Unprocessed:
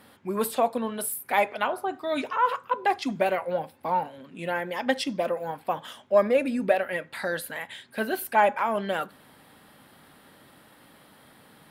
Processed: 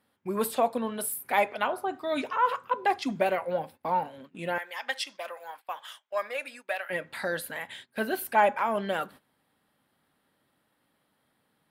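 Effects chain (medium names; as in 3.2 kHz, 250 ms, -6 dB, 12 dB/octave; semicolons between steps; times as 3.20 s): 4.58–6.90 s: high-pass 1.1 kHz 12 dB/octave; gate -45 dBFS, range -17 dB; trim -1.5 dB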